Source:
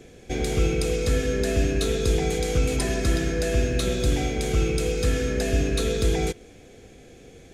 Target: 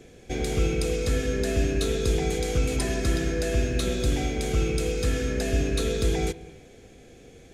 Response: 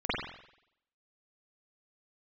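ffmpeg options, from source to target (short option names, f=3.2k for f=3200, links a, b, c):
-filter_complex "[0:a]asplit=2[a][b];[1:a]atrim=start_sample=2205,adelay=143[c];[b][c]afir=irnorm=-1:irlink=0,volume=-29.5dB[d];[a][d]amix=inputs=2:normalize=0,volume=-2dB"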